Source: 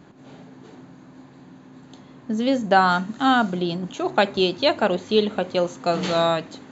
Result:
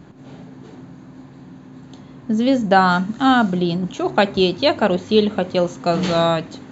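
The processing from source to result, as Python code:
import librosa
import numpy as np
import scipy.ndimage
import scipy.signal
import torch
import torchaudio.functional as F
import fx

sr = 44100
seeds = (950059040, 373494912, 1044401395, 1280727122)

y = fx.low_shelf(x, sr, hz=180.0, db=9.5)
y = y * 10.0 ** (2.0 / 20.0)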